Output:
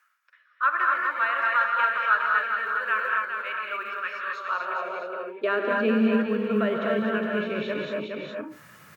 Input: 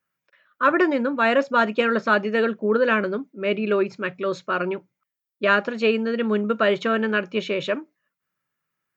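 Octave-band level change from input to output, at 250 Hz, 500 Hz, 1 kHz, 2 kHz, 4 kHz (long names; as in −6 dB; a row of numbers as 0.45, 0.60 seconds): −3.5, −7.0, 0.0, −0.5, −7.0 decibels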